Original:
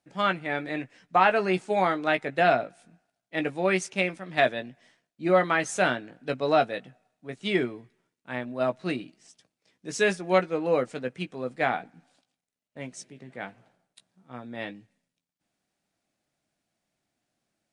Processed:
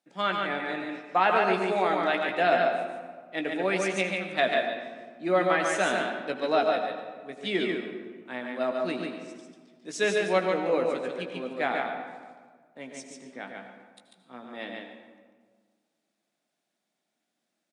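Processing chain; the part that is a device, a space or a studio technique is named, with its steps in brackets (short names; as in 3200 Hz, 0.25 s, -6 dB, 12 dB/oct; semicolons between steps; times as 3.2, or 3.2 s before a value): PA in a hall (HPF 190 Hz 24 dB/oct; bell 3600 Hz +4.5 dB 0.21 oct; echo 0.143 s -4 dB; reverb RT60 1.7 s, pre-delay 73 ms, DRR 6.5 dB); gain -3 dB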